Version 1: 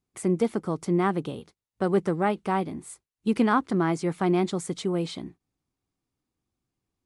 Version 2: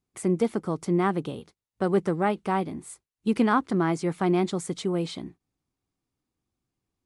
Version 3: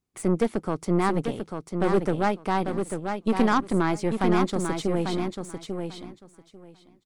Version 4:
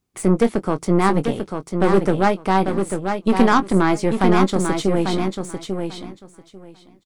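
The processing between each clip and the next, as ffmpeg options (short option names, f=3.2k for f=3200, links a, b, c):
-af anull
-filter_complex "[0:a]aeval=exprs='0.266*(cos(1*acos(clip(val(0)/0.266,-1,1)))-cos(1*PI/2))+0.0299*(cos(6*acos(clip(val(0)/0.266,-1,1)))-cos(6*PI/2))':c=same,asplit=2[a][b];[b]aecho=0:1:844|1688|2532:0.501|0.0802|0.0128[c];[a][c]amix=inputs=2:normalize=0"
-filter_complex "[0:a]asplit=2[a][b];[b]adelay=21,volume=-11.5dB[c];[a][c]amix=inputs=2:normalize=0,volume=6.5dB"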